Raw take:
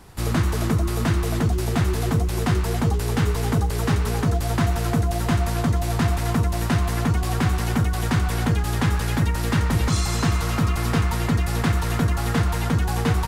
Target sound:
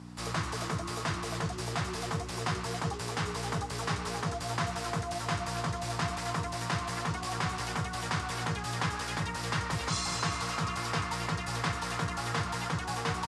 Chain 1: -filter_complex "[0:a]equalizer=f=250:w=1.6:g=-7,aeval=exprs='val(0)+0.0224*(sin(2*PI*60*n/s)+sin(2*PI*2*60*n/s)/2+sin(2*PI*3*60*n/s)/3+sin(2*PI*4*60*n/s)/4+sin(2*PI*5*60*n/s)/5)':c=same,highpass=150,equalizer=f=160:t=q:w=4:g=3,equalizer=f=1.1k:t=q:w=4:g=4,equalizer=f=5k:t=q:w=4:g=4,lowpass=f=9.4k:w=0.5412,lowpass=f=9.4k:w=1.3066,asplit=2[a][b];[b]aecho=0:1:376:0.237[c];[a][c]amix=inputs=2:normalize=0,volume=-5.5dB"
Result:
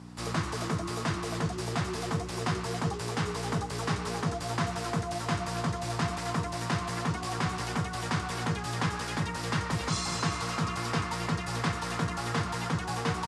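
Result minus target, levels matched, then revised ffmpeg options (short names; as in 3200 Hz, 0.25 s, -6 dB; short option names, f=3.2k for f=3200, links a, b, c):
250 Hz band +3.0 dB
-filter_complex "[0:a]equalizer=f=250:w=1.6:g=-17.5,aeval=exprs='val(0)+0.0224*(sin(2*PI*60*n/s)+sin(2*PI*2*60*n/s)/2+sin(2*PI*3*60*n/s)/3+sin(2*PI*4*60*n/s)/4+sin(2*PI*5*60*n/s)/5)':c=same,highpass=150,equalizer=f=160:t=q:w=4:g=3,equalizer=f=1.1k:t=q:w=4:g=4,equalizer=f=5k:t=q:w=4:g=4,lowpass=f=9.4k:w=0.5412,lowpass=f=9.4k:w=1.3066,asplit=2[a][b];[b]aecho=0:1:376:0.237[c];[a][c]amix=inputs=2:normalize=0,volume=-5.5dB"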